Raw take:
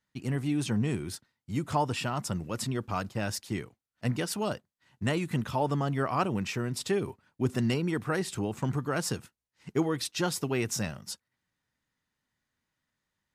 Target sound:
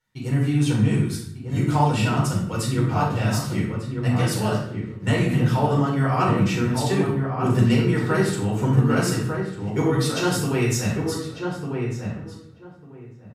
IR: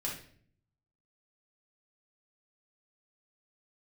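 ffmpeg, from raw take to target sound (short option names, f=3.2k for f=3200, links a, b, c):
-filter_complex "[0:a]asplit=2[a][b];[b]adelay=1198,lowpass=f=1.4k:p=1,volume=-4.5dB,asplit=2[c][d];[d]adelay=1198,lowpass=f=1.4k:p=1,volume=0.17,asplit=2[e][f];[f]adelay=1198,lowpass=f=1.4k:p=1,volume=0.17[g];[a][c][e][g]amix=inputs=4:normalize=0[h];[1:a]atrim=start_sample=2205,asetrate=33957,aresample=44100[i];[h][i]afir=irnorm=-1:irlink=0,volume=2.5dB"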